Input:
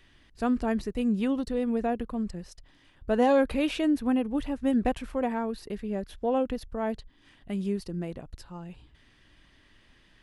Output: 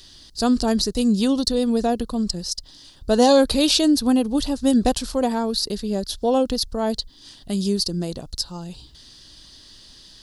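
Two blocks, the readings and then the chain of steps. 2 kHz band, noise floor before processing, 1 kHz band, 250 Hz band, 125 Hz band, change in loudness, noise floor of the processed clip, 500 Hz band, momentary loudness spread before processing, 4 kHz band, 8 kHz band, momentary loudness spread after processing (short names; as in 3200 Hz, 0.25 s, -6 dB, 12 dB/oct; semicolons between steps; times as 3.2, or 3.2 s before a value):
+3.0 dB, -61 dBFS, +6.5 dB, +7.5 dB, +7.5 dB, +7.5 dB, -48 dBFS, +7.0 dB, 16 LU, +20.0 dB, n/a, 13 LU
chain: resonant high shelf 3200 Hz +12.5 dB, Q 3; gain +7.5 dB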